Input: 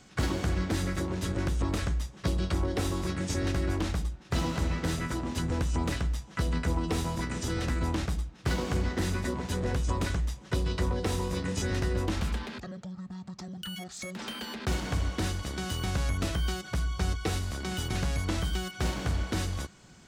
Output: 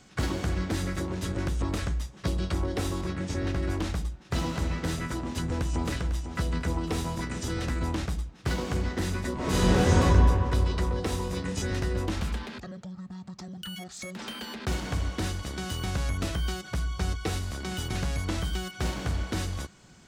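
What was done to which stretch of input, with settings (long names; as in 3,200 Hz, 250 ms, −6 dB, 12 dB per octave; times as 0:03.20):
0:03.01–0:03.63: low-pass filter 3,600 Hz 6 dB per octave
0:05.14–0:05.91: delay throw 500 ms, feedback 50%, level −9.5 dB
0:09.35–0:09.97: thrown reverb, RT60 2.8 s, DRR −12 dB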